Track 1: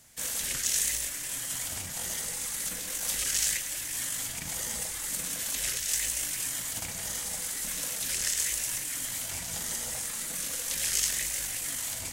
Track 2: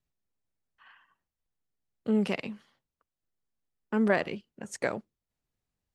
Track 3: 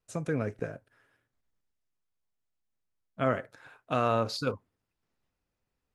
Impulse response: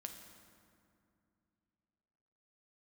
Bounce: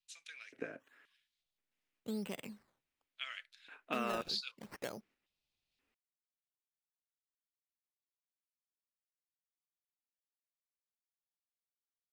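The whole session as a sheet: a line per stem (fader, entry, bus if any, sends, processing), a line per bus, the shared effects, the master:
off
1.01 s -20.5 dB -> 1.58 s -10 dB, 0.00 s, no send, decimation with a swept rate 15×, swing 100% 0.75 Hz
-4.5 dB, 0.00 s, no send, bell 2400 Hz +14 dB 1.7 oct; LFO high-pass square 0.95 Hz 270–3800 Hz; random-step tremolo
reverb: off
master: compressor 2:1, threshold -39 dBFS, peak gain reduction 8 dB

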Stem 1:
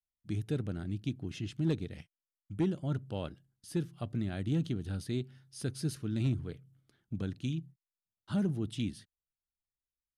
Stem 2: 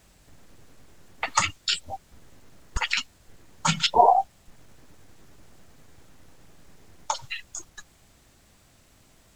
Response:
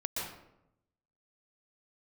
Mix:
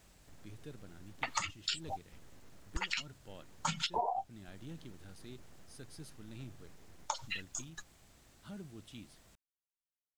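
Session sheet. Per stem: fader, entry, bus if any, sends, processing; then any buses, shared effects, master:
-10.5 dB, 0.15 s, no send, low shelf 400 Hz -8.5 dB
-5.0 dB, 0.00 s, no send, dry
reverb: off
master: compressor 6:1, threshold -32 dBFS, peak gain reduction 15 dB

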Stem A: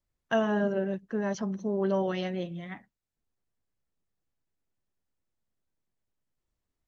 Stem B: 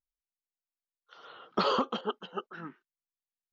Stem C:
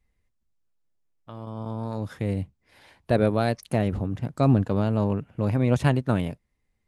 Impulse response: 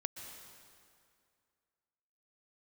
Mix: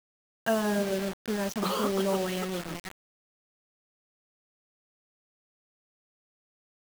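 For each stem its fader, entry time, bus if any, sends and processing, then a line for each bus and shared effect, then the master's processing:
-2.5 dB, 0.15 s, send -11 dB, dry
-3.5 dB, 0.05 s, no send, wow and flutter 78 cents
off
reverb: on, RT60 2.3 s, pre-delay 0.113 s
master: bell 7200 Hz +6 dB 0.44 oct; requantised 6-bit, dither none

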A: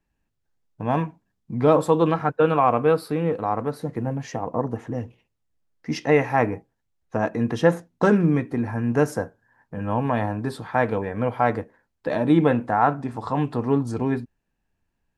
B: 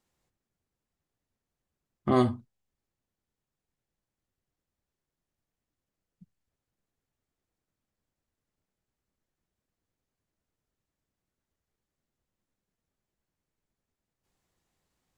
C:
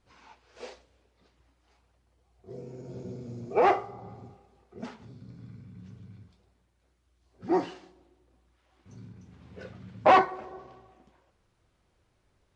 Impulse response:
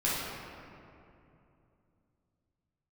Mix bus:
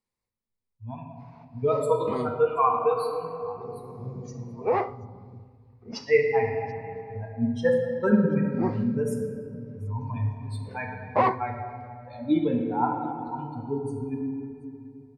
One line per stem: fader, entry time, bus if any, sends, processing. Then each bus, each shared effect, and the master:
-4.0 dB, 0.00 s, send -8 dB, echo send -22 dB, per-bin expansion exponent 3
-11.0 dB, 0.00 s, send -18.5 dB, no echo send, dry
-2.0 dB, 1.10 s, no send, no echo send, LPF 1300 Hz 6 dB/oct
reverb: on, RT60 2.8 s, pre-delay 3 ms
echo: echo 0.732 s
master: ripple EQ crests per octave 0.92, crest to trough 7 dB

